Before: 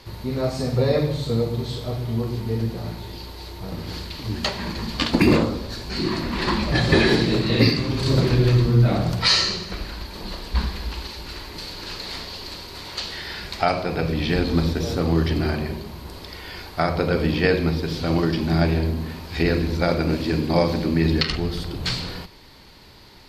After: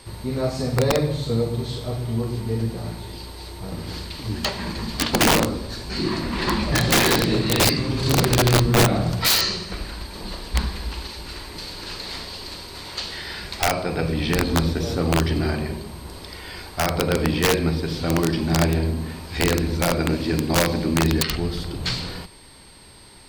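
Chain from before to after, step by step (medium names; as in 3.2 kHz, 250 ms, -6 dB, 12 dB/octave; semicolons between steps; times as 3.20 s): whistle 8.5 kHz -51 dBFS; integer overflow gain 10.5 dB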